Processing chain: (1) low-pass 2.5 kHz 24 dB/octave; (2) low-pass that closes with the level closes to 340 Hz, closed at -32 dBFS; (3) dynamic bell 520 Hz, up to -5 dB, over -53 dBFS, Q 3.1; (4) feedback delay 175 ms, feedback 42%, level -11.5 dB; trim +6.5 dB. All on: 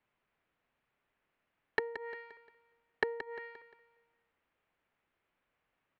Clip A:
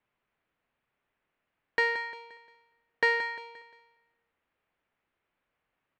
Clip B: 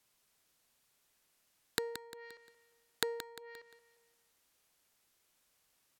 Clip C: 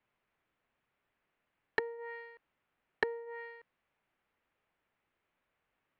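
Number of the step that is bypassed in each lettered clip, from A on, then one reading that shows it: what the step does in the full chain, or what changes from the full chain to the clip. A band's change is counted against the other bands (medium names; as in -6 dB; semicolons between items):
2, 250 Hz band -13.0 dB; 1, 4 kHz band +13.5 dB; 4, echo-to-direct -10.5 dB to none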